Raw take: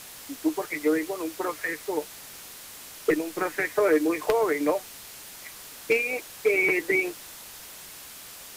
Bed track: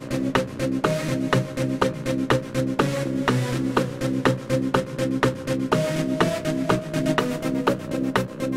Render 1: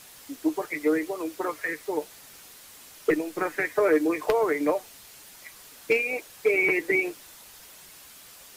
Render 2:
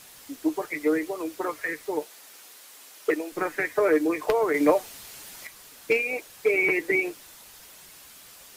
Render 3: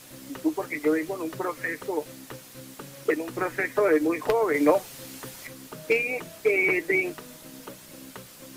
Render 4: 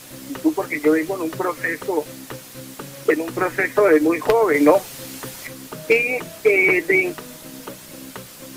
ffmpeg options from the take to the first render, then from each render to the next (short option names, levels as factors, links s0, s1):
-af "afftdn=nr=6:nf=-44"
-filter_complex "[0:a]asettb=1/sr,asplit=3[s0][s1][s2];[s0]atrim=end=2.034[s3];[s1]atrim=start=2.03:end=3.32,asetpts=PTS-STARTPTS,afade=t=in:d=0.004:c=qsin,afade=t=out:st=1.286:d=0.004:c=qsin,highpass=330[s4];[s2]atrim=start=3.316[s5];[s3][s4]acrossfade=d=0.004:c1=hsin:c2=qsin[s6];[s6][s5]acrossfade=d=0.004:c1=qsin:c2=hsin,asettb=1/sr,asplit=3[s7][s8][s9];[s7]atrim=end=4.544[s10];[s8]atrim=start=4.54:end=5.47,asetpts=PTS-STARTPTS,afade=t=in:d=0.004:c=qsin,afade=t=out:st=0.926:d=0.004:c=qsin,acontrast=23[s11];[s9]atrim=start=5.466[s12];[s10][s11]acrossfade=d=0.004:c1=hsin:c2=qsin[s13];[s13][s12]acrossfade=d=0.004:c1=qsin:c2=hsin"
-filter_complex "[1:a]volume=0.0841[s0];[0:a][s0]amix=inputs=2:normalize=0"
-af "volume=2.24,alimiter=limit=0.708:level=0:latency=1"